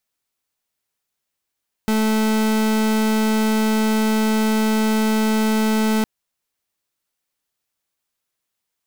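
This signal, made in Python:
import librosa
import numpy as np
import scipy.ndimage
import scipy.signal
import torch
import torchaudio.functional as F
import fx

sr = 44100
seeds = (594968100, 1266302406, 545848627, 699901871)

y = fx.pulse(sr, length_s=4.16, hz=218.0, level_db=-18.0, duty_pct=38)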